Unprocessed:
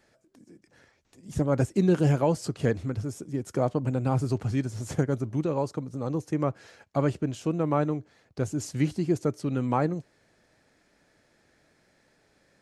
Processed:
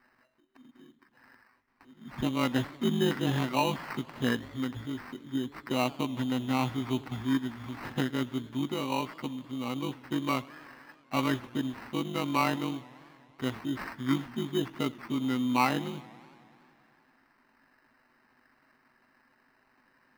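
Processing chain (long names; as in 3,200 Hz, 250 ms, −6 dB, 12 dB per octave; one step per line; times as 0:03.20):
time stretch by overlap-add 1.6×, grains 42 ms
decimation without filtering 13×
octave-band graphic EQ 125/250/500/1,000/2,000/4,000/8,000 Hz −6/+9/−6/+10/+8/+3/−5 dB
feedback echo with a swinging delay time 95 ms, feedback 78%, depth 201 cents, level −22 dB
level −6 dB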